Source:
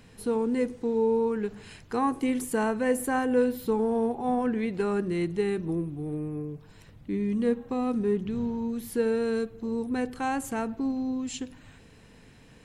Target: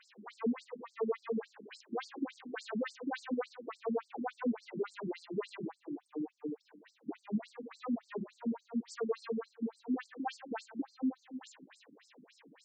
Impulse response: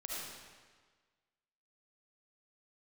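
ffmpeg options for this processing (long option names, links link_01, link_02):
-filter_complex "[0:a]asoftclip=type=tanh:threshold=-29.5dB,asplit=2[link_01][link_02];[1:a]atrim=start_sample=2205,asetrate=66150,aresample=44100[link_03];[link_02][link_03]afir=irnorm=-1:irlink=0,volume=-7dB[link_04];[link_01][link_04]amix=inputs=2:normalize=0,afftfilt=real='re*between(b*sr/1024,240*pow(6200/240,0.5+0.5*sin(2*PI*3.5*pts/sr))/1.41,240*pow(6200/240,0.5+0.5*sin(2*PI*3.5*pts/sr))*1.41)':imag='im*between(b*sr/1024,240*pow(6200/240,0.5+0.5*sin(2*PI*3.5*pts/sr))/1.41,240*pow(6200/240,0.5+0.5*sin(2*PI*3.5*pts/sr))*1.41)':win_size=1024:overlap=0.75,volume=1.5dB"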